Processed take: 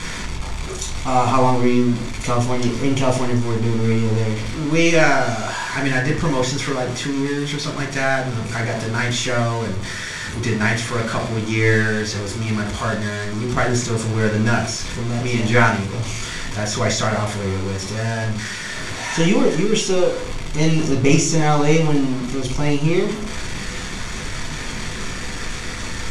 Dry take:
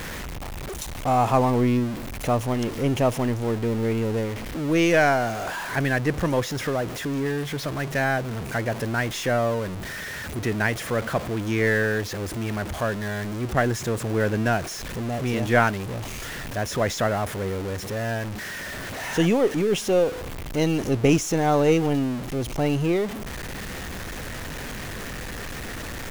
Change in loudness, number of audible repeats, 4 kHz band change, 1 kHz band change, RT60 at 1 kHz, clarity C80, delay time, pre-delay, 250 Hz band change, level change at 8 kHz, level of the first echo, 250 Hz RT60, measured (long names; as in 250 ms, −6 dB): +4.5 dB, no echo audible, +8.0 dB, +3.5 dB, 0.35 s, 13.5 dB, no echo audible, 3 ms, +4.5 dB, +8.5 dB, no echo audible, 0.65 s